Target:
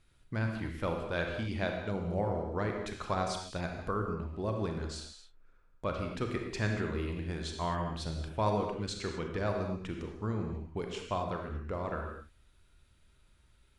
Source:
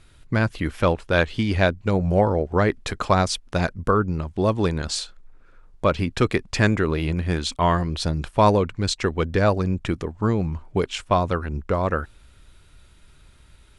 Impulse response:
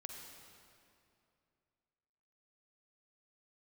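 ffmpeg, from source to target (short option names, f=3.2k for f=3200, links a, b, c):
-filter_complex "[1:a]atrim=start_sample=2205,afade=t=out:st=0.41:d=0.01,atrim=end_sample=18522,asetrate=61740,aresample=44100[a];[0:a][a]afir=irnorm=-1:irlink=0,asplit=3[b][c][d];[b]afade=t=out:st=4.13:d=0.02[e];[c]adynamicequalizer=threshold=0.00447:dfrequency=2000:dqfactor=0.7:tfrequency=2000:tqfactor=0.7:attack=5:release=100:ratio=0.375:range=2:mode=cutabove:tftype=highshelf,afade=t=in:st=4.13:d=0.02,afade=t=out:st=6.51:d=0.02[f];[d]afade=t=in:st=6.51:d=0.02[g];[e][f][g]amix=inputs=3:normalize=0,volume=-6dB"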